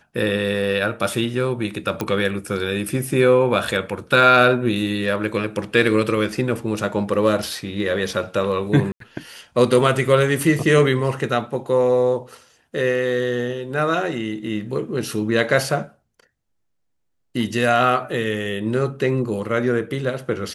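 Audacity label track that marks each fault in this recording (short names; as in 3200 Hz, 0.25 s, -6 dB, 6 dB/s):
2.010000	2.010000	pop -10 dBFS
8.920000	9.000000	gap 83 ms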